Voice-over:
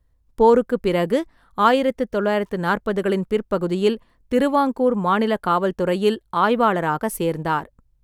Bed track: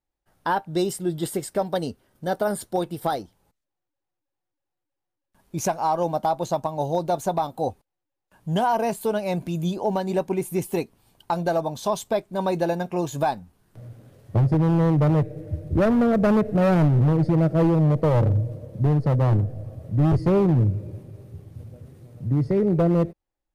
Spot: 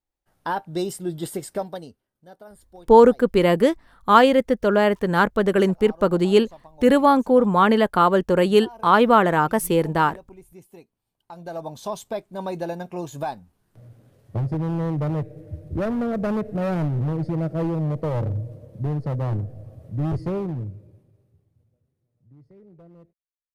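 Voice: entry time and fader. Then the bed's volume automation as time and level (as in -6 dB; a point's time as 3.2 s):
2.50 s, +2.5 dB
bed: 1.57 s -2.5 dB
2.14 s -21 dB
11.17 s -21 dB
11.68 s -5.5 dB
20.21 s -5.5 dB
21.94 s -29.5 dB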